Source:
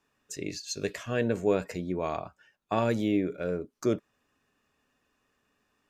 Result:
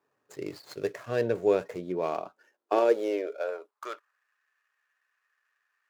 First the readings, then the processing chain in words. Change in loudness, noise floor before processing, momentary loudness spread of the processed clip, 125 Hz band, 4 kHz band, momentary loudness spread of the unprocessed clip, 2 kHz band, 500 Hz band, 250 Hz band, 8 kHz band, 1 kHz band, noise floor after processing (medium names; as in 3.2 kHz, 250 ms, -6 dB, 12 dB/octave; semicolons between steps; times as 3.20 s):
+1.0 dB, -76 dBFS, 17 LU, -8.0 dB, -6.0 dB, 10 LU, -2.0 dB, +3.0 dB, -5.5 dB, under -10 dB, +1.5 dB, -79 dBFS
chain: median filter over 15 samples; resonant low shelf 290 Hz -9.5 dB, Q 1.5; high-pass sweep 120 Hz -> 1.7 kHz, 1.75–4.25 s